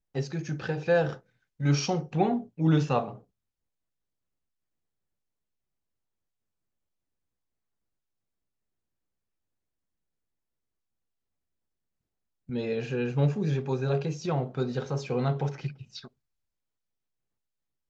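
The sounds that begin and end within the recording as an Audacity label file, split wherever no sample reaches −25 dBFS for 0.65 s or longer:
12.550000	15.670000	sound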